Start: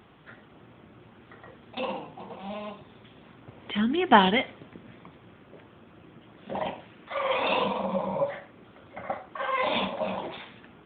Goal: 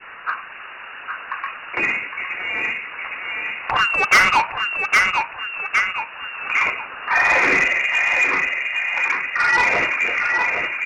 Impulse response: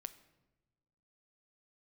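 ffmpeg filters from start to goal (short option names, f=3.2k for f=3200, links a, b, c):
-filter_complex "[0:a]asplit=2[a][b];[b]adelay=811,lowpass=f=1.9k:p=1,volume=-4dB,asplit=2[c][d];[d]adelay=811,lowpass=f=1.9k:p=1,volume=0.48,asplit=2[e][f];[f]adelay=811,lowpass=f=1.9k:p=1,volume=0.48,asplit=2[g][h];[h]adelay=811,lowpass=f=1.9k:p=1,volume=0.48,asplit=2[i][j];[j]adelay=811,lowpass=f=1.9k:p=1,volume=0.48,asplit=2[k][l];[l]adelay=811,lowpass=f=1.9k:p=1,volume=0.48[m];[a][c][e][g][i][k][m]amix=inputs=7:normalize=0,asplit=2[n][o];[o]acompressor=threshold=-40dB:ratio=10,volume=-1dB[p];[n][p]amix=inputs=2:normalize=0,asplit=2[q][r];[r]highpass=f=720:p=1,volume=15dB,asoftclip=type=tanh:threshold=-1.5dB[s];[q][s]amix=inputs=2:normalize=0,lowpass=f=2.3k:p=1,volume=-6dB,equalizer=f=1.7k:t=o:w=0.91:g=13.5,lowpass=f=2.6k:t=q:w=0.5098,lowpass=f=2.6k:t=q:w=0.6013,lowpass=f=2.6k:t=q:w=0.9,lowpass=f=2.6k:t=q:w=2.563,afreqshift=-3000,acontrast=76,adynamicequalizer=threshold=0.0562:dfrequency=1100:dqfactor=0.79:tfrequency=1100:tqfactor=0.79:attack=5:release=100:ratio=0.375:range=2:mode=cutabove:tftype=bell,volume=-5dB"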